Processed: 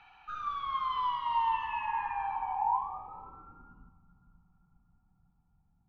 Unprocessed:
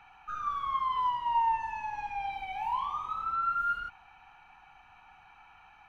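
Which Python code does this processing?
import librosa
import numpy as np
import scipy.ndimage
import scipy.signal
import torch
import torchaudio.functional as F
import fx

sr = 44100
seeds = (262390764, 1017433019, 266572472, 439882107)

y = fx.echo_diffused(x, sr, ms=487, feedback_pct=47, wet_db=-7.0)
y = fx.filter_sweep_lowpass(y, sr, from_hz=4100.0, to_hz=180.0, start_s=1.4, end_s=4.05, q=2.2)
y = y * librosa.db_to_amplitude(-3.0)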